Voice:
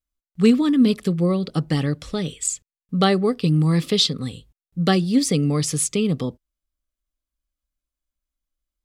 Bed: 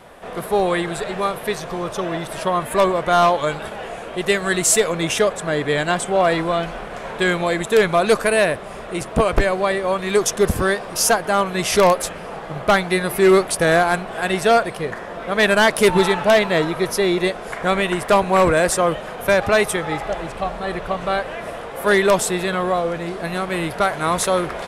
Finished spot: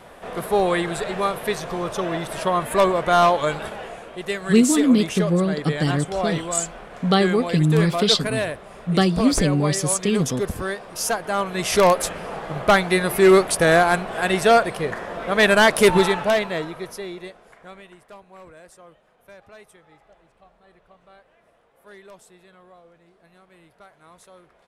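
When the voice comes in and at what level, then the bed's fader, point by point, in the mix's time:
4.10 s, 0.0 dB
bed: 0:03.65 −1 dB
0:04.15 −8.5 dB
0:10.92 −8.5 dB
0:12.04 0 dB
0:15.93 0 dB
0:18.21 −30 dB

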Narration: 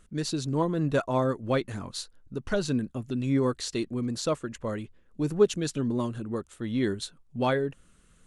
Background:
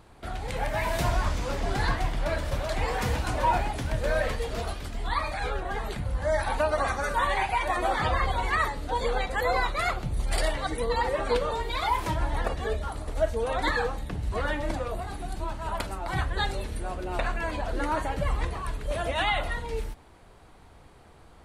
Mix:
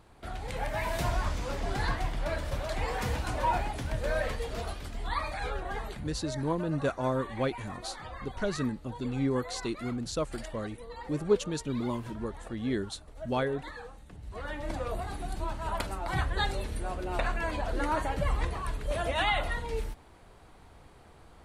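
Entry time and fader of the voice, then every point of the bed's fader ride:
5.90 s, −4.0 dB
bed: 0:05.78 −4 dB
0:06.45 −17 dB
0:14.05 −17 dB
0:14.90 −1.5 dB

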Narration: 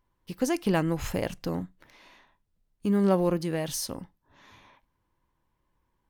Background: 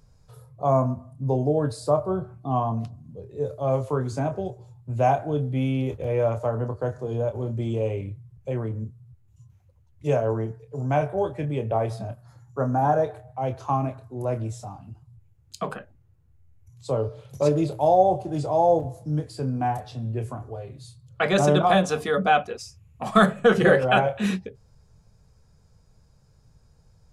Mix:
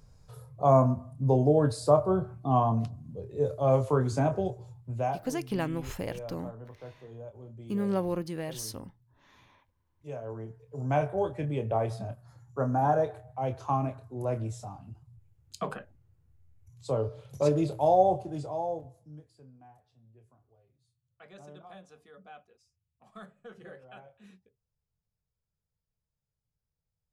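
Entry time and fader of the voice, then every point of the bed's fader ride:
4.85 s, −6.0 dB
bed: 0:04.72 0 dB
0:05.35 −18 dB
0:10.07 −18 dB
0:10.92 −4 dB
0:18.10 −4 dB
0:19.67 −30.5 dB

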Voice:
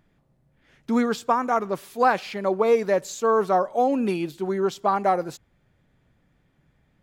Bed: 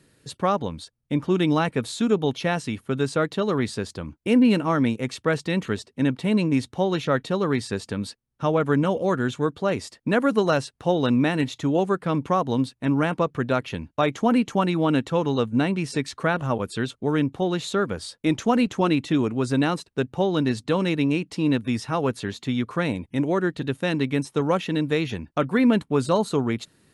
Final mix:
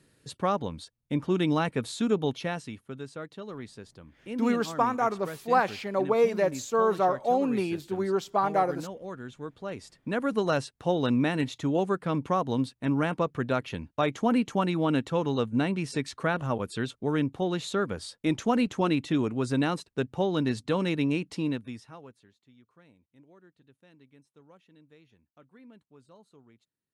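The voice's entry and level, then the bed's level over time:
3.50 s, −3.5 dB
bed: 0:02.27 −4.5 dB
0:03.08 −16.5 dB
0:09.29 −16.5 dB
0:10.57 −4.5 dB
0:21.37 −4.5 dB
0:22.37 −34 dB

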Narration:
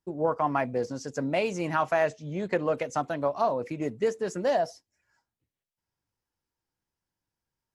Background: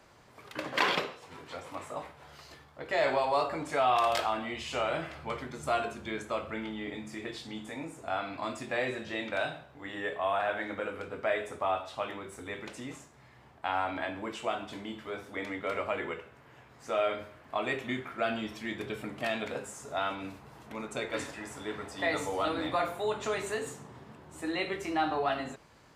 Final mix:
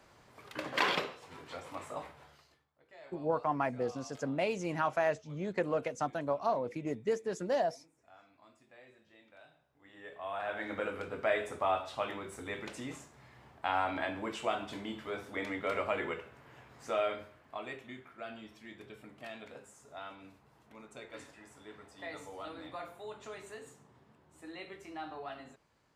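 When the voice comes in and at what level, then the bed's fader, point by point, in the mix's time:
3.05 s, −5.5 dB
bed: 0:02.18 −2.5 dB
0:02.72 −26 dB
0:09.47 −26 dB
0:10.77 −0.5 dB
0:16.81 −0.5 dB
0:17.92 −13.5 dB

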